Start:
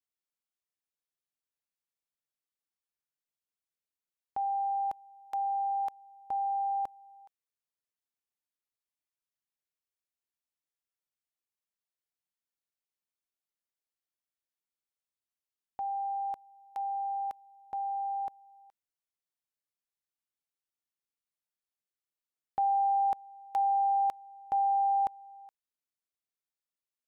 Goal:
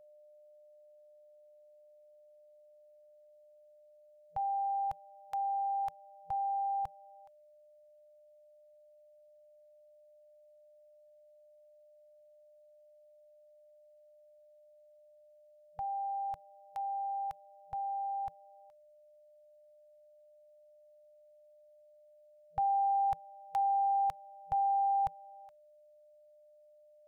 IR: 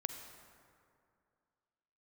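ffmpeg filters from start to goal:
-af "aeval=exprs='val(0)+0.00158*sin(2*PI*600*n/s)':c=same,asubboost=boost=4.5:cutoff=240,afftfilt=real='re*(1-between(b*sr/4096,170,480))':imag='im*(1-between(b*sr/4096,170,480))':win_size=4096:overlap=0.75"

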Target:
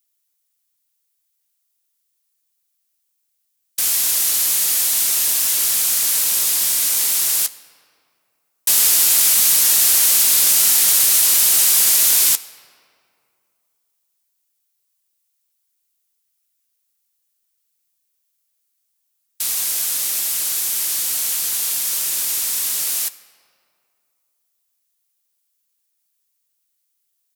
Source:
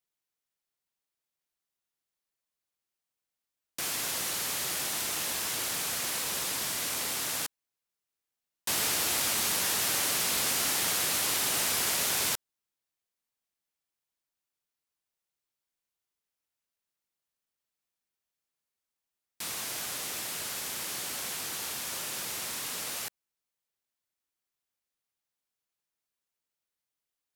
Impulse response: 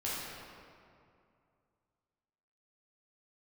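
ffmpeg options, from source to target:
-filter_complex "[0:a]asplit=2[s0][s1];[s1]asetrate=29433,aresample=44100,atempo=1.49831,volume=0.282[s2];[s0][s2]amix=inputs=2:normalize=0,crystalizer=i=5.5:c=0,asplit=2[s3][s4];[1:a]atrim=start_sample=2205,lowshelf=f=200:g=-11.5[s5];[s4][s5]afir=irnorm=-1:irlink=0,volume=0.119[s6];[s3][s6]amix=inputs=2:normalize=0,volume=0.794"

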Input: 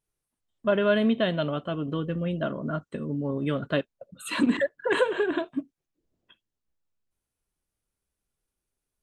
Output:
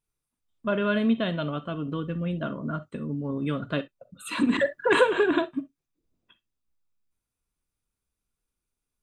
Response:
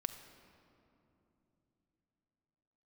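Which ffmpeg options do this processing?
-filter_complex "[0:a]asplit=3[s0][s1][s2];[s0]afade=t=out:st=4.52:d=0.02[s3];[s1]acontrast=65,afade=t=in:st=4.52:d=0.02,afade=t=out:st=5.44:d=0.02[s4];[s2]afade=t=in:st=5.44:d=0.02[s5];[s3][s4][s5]amix=inputs=3:normalize=0[s6];[1:a]atrim=start_sample=2205,atrim=end_sample=3087[s7];[s6][s7]afir=irnorm=-1:irlink=0"

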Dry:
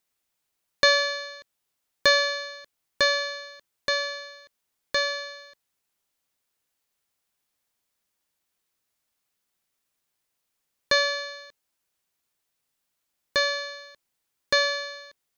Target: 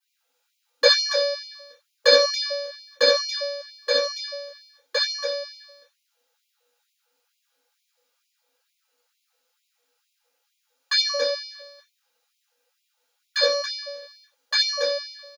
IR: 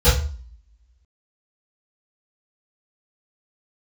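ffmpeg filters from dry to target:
-filter_complex "[0:a]aecho=1:1:69.97|279.9:0.562|0.398[s0];[1:a]atrim=start_sample=2205,afade=t=out:st=0.17:d=0.01,atrim=end_sample=7938[s1];[s0][s1]afir=irnorm=-1:irlink=0,afftfilt=real='re*gte(b*sr/1024,230*pow(2100/230,0.5+0.5*sin(2*PI*2.2*pts/sr)))':imag='im*gte(b*sr/1024,230*pow(2100/230,0.5+0.5*sin(2*PI*2.2*pts/sr)))':win_size=1024:overlap=0.75,volume=0.282"

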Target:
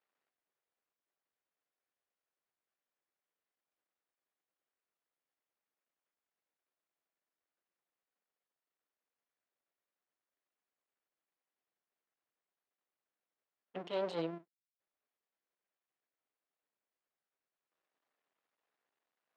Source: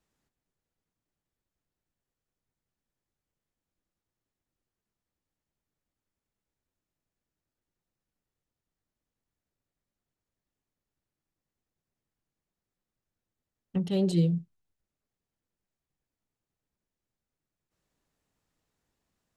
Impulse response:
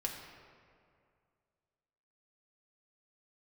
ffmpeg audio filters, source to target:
-af "bandreject=f=890:w=18,aeval=exprs='max(val(0),0)':c=same,highpass=540,lowpass=2800,volume=1.33"

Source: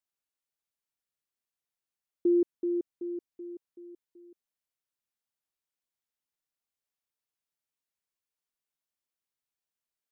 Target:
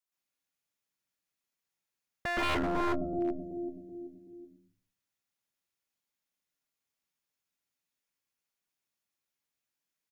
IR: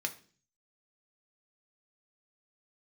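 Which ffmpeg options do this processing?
-filter_complex "[0:a]aeval=exprs='0.112*(cos(1*acos(clip(val(0)/0.112,-1,1)))-cos(1*PI/2))+0.0501*(cos(4*acos(clip(val(0)/0.112,-1,1)))-cos(4*PI/2))':c=same,asplit=2[s0][s1];[s1]asplit=4[s2][s3][s4][s5];[s2]adelay=116,afreqshift=-81,volume=0.211[s6];[s3]adelay=232,afreqshift=-162,volume=0.0822[s7];[s4]adelay=348,afreqshift=-243,volume=0.032[s8];[s5]adelay=464,afreqshift=-324,volume=0.0126[s9];[s6][s7][s8][s9]amix=inputs=4:normalize=0[s10];[s0][s10]amix=inputs=2:normalize=0,adynamicequalizer=threshold=0.00891:dfrequency=150:dqfactor=0.96:tfrequency=150:tqfactor=0.96:attack=5:release=100:ratio=0.375:range=1.5:mode=cutabove:tftype=bell,asplit=2[s11][s12];[1:a]atrim=start_sample=2205,lowshelf=f=140:g=9.5,adelay=119[s13];[s12][s13]afir=irnorm=-1:irlink=0,volume=1.26[s14];[s11][s14]amix=inputs=2:normalize=0,aeval=exprs='0.075*(abs(mod(val(0)/0.075+3,4)-2)-1)':c=same,volume=0.794"

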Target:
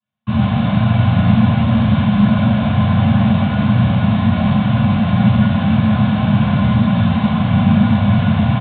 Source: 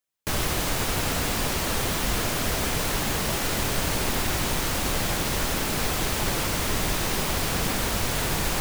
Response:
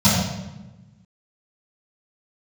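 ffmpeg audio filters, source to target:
-filter_complex "[0:a]aresample=8000,asoftclip=type=tanh:threshold=0.0596,aresample=44100[s0];[1:a]atrim=start_sample=2205,asetrate=48510,aresample=44100[s1];[s0][s1]afir=irnorm=-1:irlink=0,volume=0.211"

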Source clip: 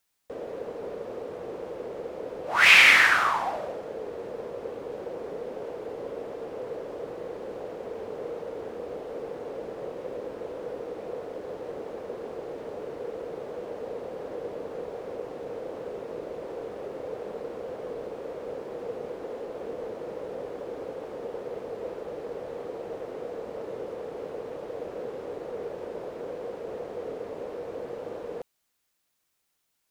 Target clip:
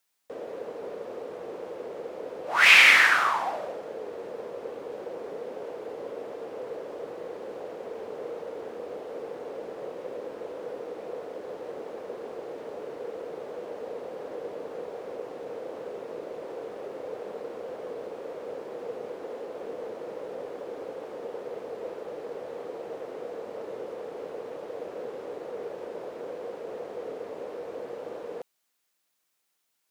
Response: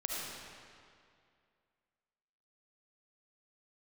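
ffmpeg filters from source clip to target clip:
-af "highpass=f=260:p=1"

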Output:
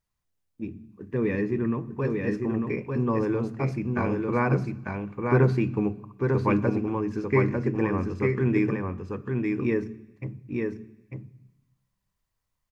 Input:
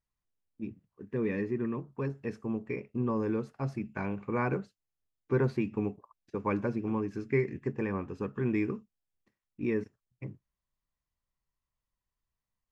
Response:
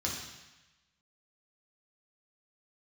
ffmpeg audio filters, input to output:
-filter_complex "[0:a]aecho=1:1:897:0.668,asplit=2[s0][s1];[1:a]atrim=start_sample=2205,lowshelf=f=270:g=10[s2];[s1][s2]afir=irnorm=-1:irlink=0,volume=0.0891[s3];[s0][s3]amix=inputs=2:normalize=0,volume=1.78"

